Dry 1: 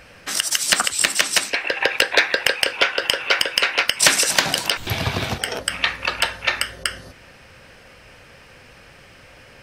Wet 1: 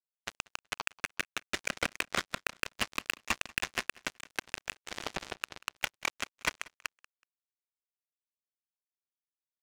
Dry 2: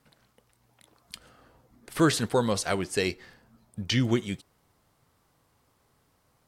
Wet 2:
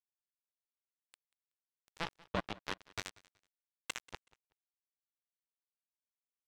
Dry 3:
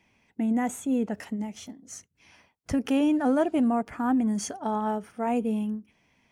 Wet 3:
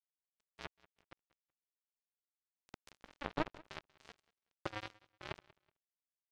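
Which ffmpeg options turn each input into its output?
-filter_complex "[0:a]aeval=exprs='if(lt(val(0),0),0.251*val(0),val(0))':channel_layout=same,highpass=frequency=57:width=0.5412,highpass=frequency=57:width=1.3066,lowshelf=frequency=360:gain=-7,bandreject=frequency=1600:width=18,alimiter=limit=-11.5dB:level=0:latency=1:release=303,acompressor=threshold=-43dB:ratio=2,acrusher=bits=2:mode=log:mix=0:aa=0.000001,highpass=frequency=340:width_type=q:width=0.5412,highpass=frequency=340:width_type=q:width=1.307,lowpass=frequency=3600:width_type=q:width=0.5176,lowpass=frequency=3600:width_type=q:width=0.7071,lowpass=frequency=3600:width_type=q:width=1.932,afreqshift=-320,asplit=2[link_01][link_02];[link_02]adelay=100,lowpass=frequency=1100:poles=1,volume=-9dB,asplit=2[link_03][link_04];[link_04]adelay=100,lowpass=frequency=1100:poles=1,volume=0.43,asplit=2[link_05][link_06];[link_06]adelay=100,lowpass=frequency=1100:poles=1,volume=0.43,asplit=2[link_07][link_08];[link_08]adelay=100,lowpass=frequency=1100:poles=1,volume=0.43,asplit=2[link_09][link_10];[link_10]adelay=100,lowpass=frequency=1100:poles=1,volume=0.43[link_11];[link_03][link_05][link_07][link_09][link_11]amix=inputs=5:normalize=0[link_12];[link_01][link_12]amix=inputs=2:normalize=0,acrusher=bits=4:mix=0:aa=0.5,asplit=2[link_13][link_14];[link_14]aecho=0:1:187|374:0.0708|0.017[link_15];[link_13][link_15]amix=inputs=2:normalize=0,volume=8dB"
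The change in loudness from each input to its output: −17.0, −15.5, −19.0 LU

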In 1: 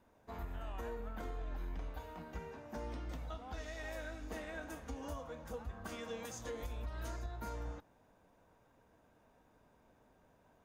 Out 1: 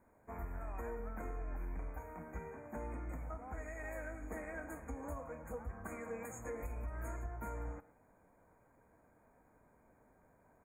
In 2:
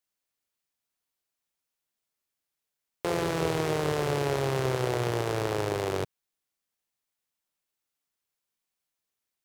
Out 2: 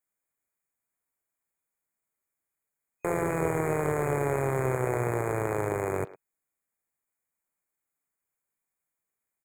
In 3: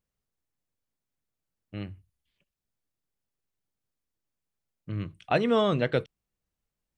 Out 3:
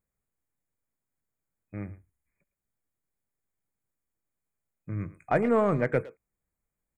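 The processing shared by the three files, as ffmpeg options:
-filter_complex "[0:a]afftfilt=real='re*(1-between(b*sr/4096,2500,6500))':imag='im*(1-between(b*sr/4096,2500,6500))':win_size=4096:overlap=0.75,asplit=2[link_01][link_02];[link_02]adelay=110,highpass=300,lowpass=3400,asoftclip=type=hard:threshold=-22dB,volume=-16dB[link_03];[link_01][link_03]amix=inputs=2:normalize=0,aeval=exprs='0.251*(cos(1*acos(clip(val(0)/0.251,-1,1)))-cos(1*PI/2))+0.00631*(cos(6*acos(clip(val(0)/0.251,-1,1)))-cos(6*PI/2))':channel_layout=same"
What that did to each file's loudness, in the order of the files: 0.0, 0.0, 0.0 LU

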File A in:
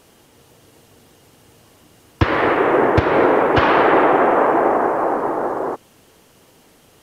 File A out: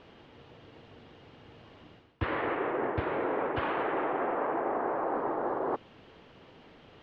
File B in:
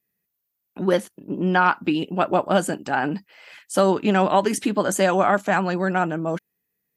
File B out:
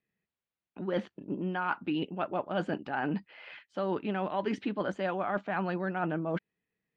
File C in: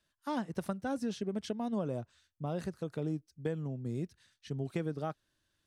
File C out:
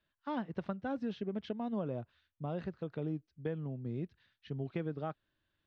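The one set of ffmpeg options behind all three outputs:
-af "lowpass=frequency=3600:width=0.5412,lowpass=frequency=3600:width=1.3066,areverse,acompressor=threshold=-26dB:ratio=10,areverse,volume=-2dB"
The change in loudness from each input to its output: −15.5, −12.0, −2.0 LU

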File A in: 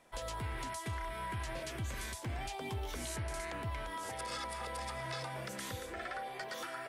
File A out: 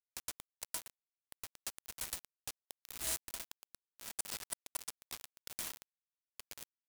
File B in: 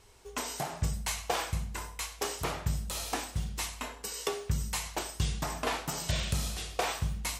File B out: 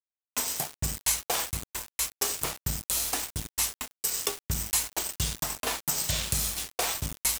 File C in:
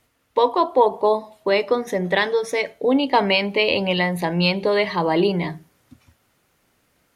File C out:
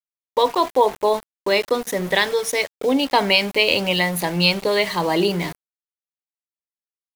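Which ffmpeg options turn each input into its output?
-af "aemphasis=mode=production:type=75kf,aeval=exprs='val(0)*gte(abs(val(0)),0.0376)':channel_layout=same,volume=-1dB"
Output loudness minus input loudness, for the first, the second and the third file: −3.0, +5.5, +0.5 LU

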